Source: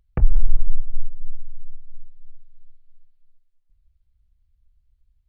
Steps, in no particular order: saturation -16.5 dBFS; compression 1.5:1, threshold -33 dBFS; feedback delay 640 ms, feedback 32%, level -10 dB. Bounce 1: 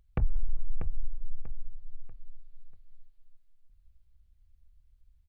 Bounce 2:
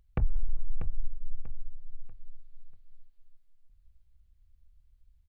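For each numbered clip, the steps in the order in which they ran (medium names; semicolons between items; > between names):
compression > feedback delay > saturation; compression > saturation > feedback delay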